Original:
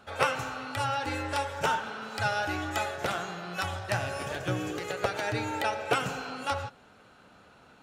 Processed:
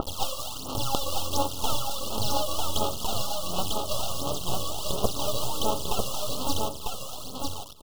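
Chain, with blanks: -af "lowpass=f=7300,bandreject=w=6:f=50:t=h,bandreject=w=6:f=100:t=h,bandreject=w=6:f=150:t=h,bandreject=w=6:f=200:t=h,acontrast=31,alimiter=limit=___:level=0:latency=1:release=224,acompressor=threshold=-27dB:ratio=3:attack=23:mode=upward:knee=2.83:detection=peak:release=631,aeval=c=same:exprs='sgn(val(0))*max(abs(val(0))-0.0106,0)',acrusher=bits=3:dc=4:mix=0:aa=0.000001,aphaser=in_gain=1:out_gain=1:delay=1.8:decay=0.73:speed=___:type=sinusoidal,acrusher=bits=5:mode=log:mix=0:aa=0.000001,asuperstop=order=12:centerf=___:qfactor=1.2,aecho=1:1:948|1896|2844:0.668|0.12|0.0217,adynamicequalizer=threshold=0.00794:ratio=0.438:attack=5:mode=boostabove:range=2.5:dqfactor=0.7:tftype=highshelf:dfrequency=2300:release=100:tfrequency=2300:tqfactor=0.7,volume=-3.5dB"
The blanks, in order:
-12.5dB, 1.4, 1900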